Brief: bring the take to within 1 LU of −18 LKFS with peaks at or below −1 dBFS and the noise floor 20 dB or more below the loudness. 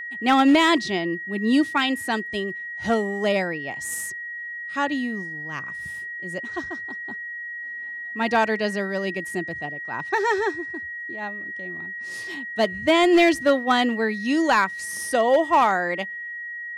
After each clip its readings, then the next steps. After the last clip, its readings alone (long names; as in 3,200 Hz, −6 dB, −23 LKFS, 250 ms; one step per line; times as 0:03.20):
share of clipped samples 0.3%; peaks flattened at −11.0 dBFS; interfering tone 1,900 Hz; level of the tone −31 dBFS; integrated loudness −23.5 LKFS; sample peak −11.0 dBFS; target loudness −18.0 LKFS
→ clipped peaks rebuilt −11 dBFS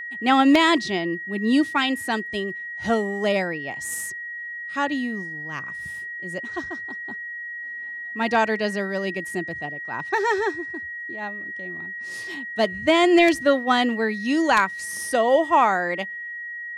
share of clipped samples 0.0%; interfering tone 1,900 Hz; level of the tone −31 dBFS
→ notch filter 1,900 Hz, Q 30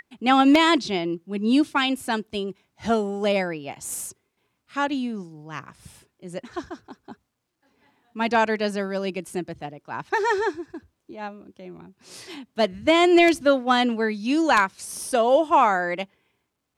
interfering tone none found; integrated loudness −22.0 LKFS; sample peak −2.5 dBFS; target loudness −18.0 LKFS
→ level +4 dB
brickwall limiter −1 dBFS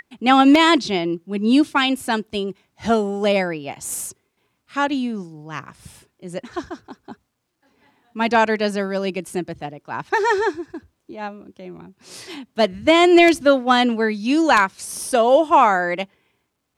integrated loudness −18.0 LKFS; sample peak −1.0 dBFS; background noise floor −73 dBFS